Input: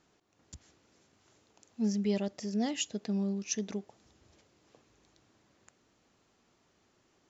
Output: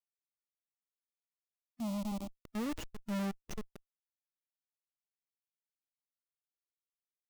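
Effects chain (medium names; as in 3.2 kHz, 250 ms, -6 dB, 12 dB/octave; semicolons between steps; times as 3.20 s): Schmitt trigger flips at -31.5 dBFS; harmonic-percussive split percussive -11 dB; 1.80–2.45 s: static phaser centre 440 Hz, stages 6; trim +4.5 dB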